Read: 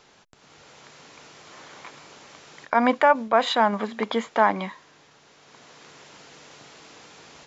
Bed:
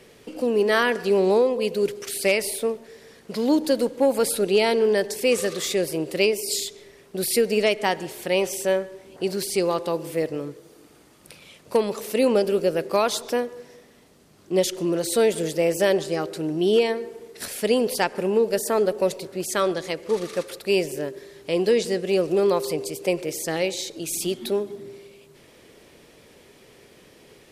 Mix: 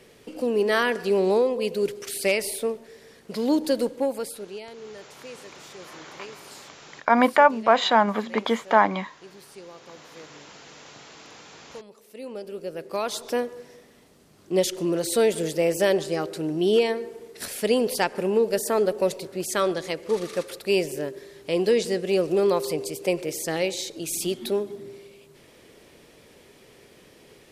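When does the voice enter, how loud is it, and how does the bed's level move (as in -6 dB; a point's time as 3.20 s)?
4.35 s, +1.5 dB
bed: 3.91 s -2 dB
4.69 s -21.5 dB
12.01 s -21.5 dB
13.40 s -1 dB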